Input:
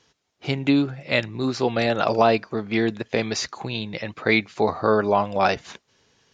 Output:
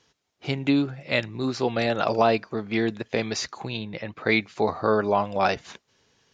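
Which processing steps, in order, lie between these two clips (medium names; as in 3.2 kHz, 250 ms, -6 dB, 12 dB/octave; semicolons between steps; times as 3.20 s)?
3.77–4.21 s: treble shelf 4.5 kHz -12 dB; trim -2.5 dB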